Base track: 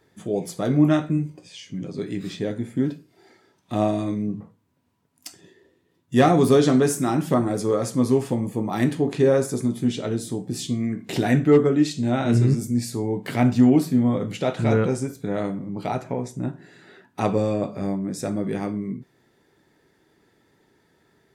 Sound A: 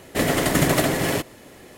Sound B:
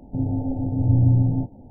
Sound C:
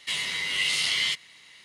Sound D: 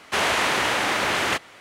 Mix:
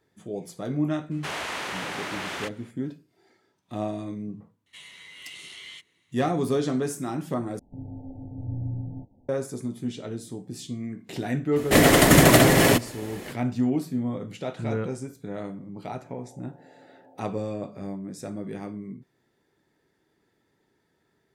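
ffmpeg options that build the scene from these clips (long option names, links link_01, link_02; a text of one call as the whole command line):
ffmpeg -i bed.wav -i cue0.wav -i cue1.wav -i cue2.wav -i cue3.wav -filter_complex "[2:a]asplit=2[link_01][link_02];[0:a]volume=-8.5dB[link_03];[3:a]equalizer=frequency=4900:width_type=o:width=0.23:gain=-13[link_04];[1:a]acontrast=59[link_05];[link_02]highpass=frequency=480:width=0.5412,highpass=frequency=480:width=1.3066[link_06];[link_03]asplit=2[link_07][link_08];[link_07]atrim=end=7.594[link_09];[link_01]atrim=end=1.7,asetpts=PTS-STARTPTS,volume=-14.5dB[link_10];[link_08]atrim=start=9.286[link_11];[4:a]atrim=end=1.6,asetpts=PTS-STARTPTS,volume=-10.5dB,afade=type=in:duration=0.004:curve=hsin,afade=type=out:start_time=1.596:duration=0.004:curve=hsin,adelay=1110[link_12];[link_04]atrim=end=1.64,asetpts=PTS-STARTPTS,volume=-16.5dB,afade=type=in:duration=0.004:curve=hsin,afade=type=out:start_time=1.636:duration=0.004:curve=hsin,adelay=4660[link_13];[link_05]atrim=end=1.77,asetpts=PTS-STARTPTS,volume=-1dB,afade=type=in:duration=0.004:curve=hsin,afade=type=out:start_time=1.766:duration=0.004:curve=hsin,adelay=11560[link_14];[link_06]atrim=end=1.7,asetpts=PTS-STARTPTS,volume=-12.5dB,afade=type=in:duration=0.004:curve=hsin,afade=type=out:start_time=1.696:duration=0.004:curve=hsin,adelay=15870[link_15];[link_09][link_10]acrossfade=duration=0.004:curve1=hsin:curve2=hsin[link_16];[link_16][link_11]acrossfade=duration=0.004:curve1=hsin:curve2=hsin[link_17];[link_17][link_12][link_13][link_14][link_15]amix=inputs=5:normalize=0" out.wav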